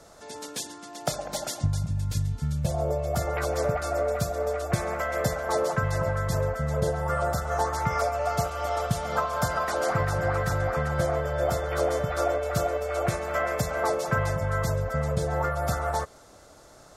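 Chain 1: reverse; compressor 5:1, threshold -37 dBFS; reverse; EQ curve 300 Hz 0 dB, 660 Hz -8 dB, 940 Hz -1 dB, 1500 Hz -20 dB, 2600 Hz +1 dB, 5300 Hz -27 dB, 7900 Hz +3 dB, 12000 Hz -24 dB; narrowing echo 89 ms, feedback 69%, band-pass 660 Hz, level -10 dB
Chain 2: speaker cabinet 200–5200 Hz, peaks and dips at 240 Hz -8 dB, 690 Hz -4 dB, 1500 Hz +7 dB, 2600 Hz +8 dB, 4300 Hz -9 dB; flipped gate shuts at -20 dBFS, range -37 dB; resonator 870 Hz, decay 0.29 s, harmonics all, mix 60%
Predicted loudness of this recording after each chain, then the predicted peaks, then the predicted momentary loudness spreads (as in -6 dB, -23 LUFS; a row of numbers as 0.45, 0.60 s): -42.5, -45.5 LUFS; -27.5, -24.5 dBFS; 4, 18 LU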